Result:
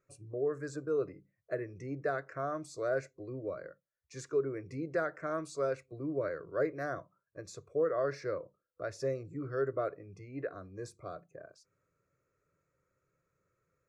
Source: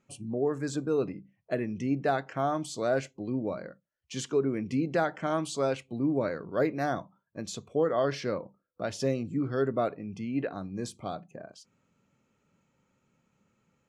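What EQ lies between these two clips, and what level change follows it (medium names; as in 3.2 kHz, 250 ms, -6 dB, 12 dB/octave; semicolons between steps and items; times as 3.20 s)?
treble shelf 7.7 kHz -10.5 dB; static phaser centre 840 Hz, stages 6; -3.0 dB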